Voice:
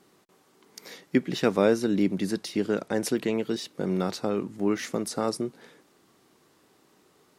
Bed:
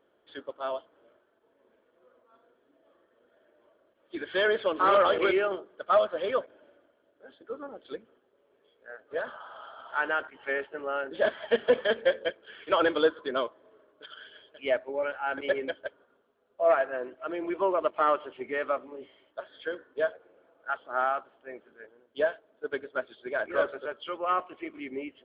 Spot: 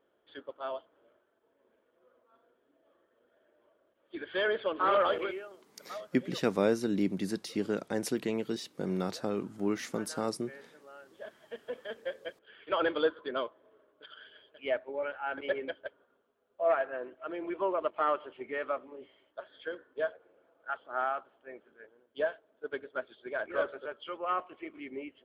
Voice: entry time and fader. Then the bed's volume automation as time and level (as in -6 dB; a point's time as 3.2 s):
5.00 s, -5.5 dB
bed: 5.14 s -4.5 dB
5.48 s -20 dB
11.41 s -20 dB
12.86 s -4.5 dB